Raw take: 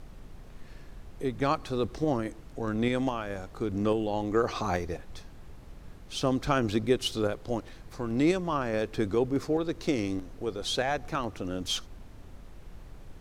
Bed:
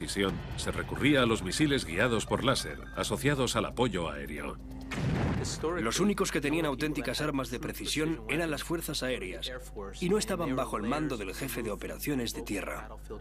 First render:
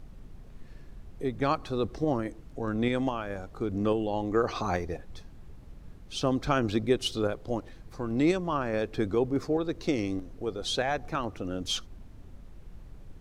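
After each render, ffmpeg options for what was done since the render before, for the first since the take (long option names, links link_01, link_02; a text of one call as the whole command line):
ffmpeg -i in.wav -af "afftdn=noise_reduction=6:noise_floor=-48" out.wav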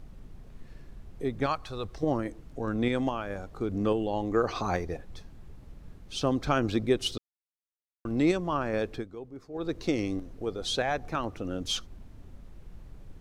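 ffmpeg -i in.wav -filter_complex "[0:a]asettb=1/sr,asplit=3[link_01][link_02][link_03];[link_01]atrim=end=1.464[link_04];[link_02]atrim=start=1.46:end=2.03,asetpts=PTS-STARTPTS,afade=type=in:duration=0.004:curve=qsin,afade=type=out:start_time=0.566:duration=0.004:curve=qsin,equalizer=frequency=280:width_type=o:width=1.8:gain=-11[link_05];[link_03]atrim=start=2.026[link_06];[link_04][link_05]acrossfade=duration=0.004:curve1=hsin:curve2=qsin[link_07];[link_07][link_06]acrossfade=duration=0.004:curve1=qsin:curve2=hsin,asplit=5[link_08][link_09][link_10][link_11][link_12];[link_08]atrim=end=7.18,asetpts=PTS-STARTPTS,afade=type=out:start_time=7.176:duration=0.004:curve=hsin[link_13];[link_09]atrim=start=7.18:end=8.05,asetpts=PTS-STARTPTS,volume=0[link_14];[link_10]atrim=start=8.05:end=9.05,asetpts=PTS-STARTPTS,afade=type=in:duration=0.004:curve=hsin,afade=type=out:start_time=0.87:duration=0.13:silence=0.16788[link_15];[link_11]atrim=start=9.05:end=9.53,asetpts=PTS-STARTPTS,volume=-15.5dB[link_16];[link_12]atrim=start=9.53,asetpts=PTS-STARTPTS,afade=type=in:duration=0.13:silence=0.16788[link_17];[link_13][link_14][link_15][link_16][link_17]concat=n=5:v=0:a=1" out.wav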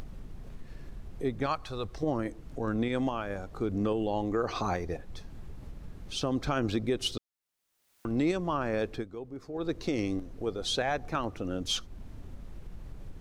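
ffmpeg -i in.wav -af "alimiter=limit=-19dB:level=0:latency=1:release=97,acompressor=mode=upward:threshold=-35dB:ratio=2.5" out.wav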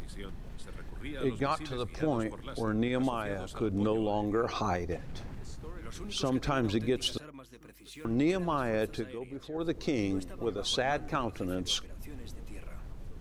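ffmpeg -i in.wav -i bed.wav -filter_complex "[1:a]volume=-17dB[link_01];[0:a][link_01]amix=inputs=2:normalize=0" out.wav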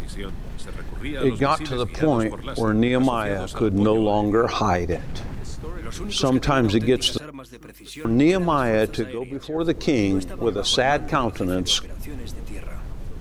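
ffmpeg -i in.wav -af "volume=10.5dB" out.wav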